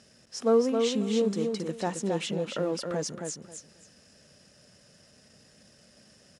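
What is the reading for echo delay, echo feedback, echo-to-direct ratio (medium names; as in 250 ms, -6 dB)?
269 ms, 20%, -5.0 dB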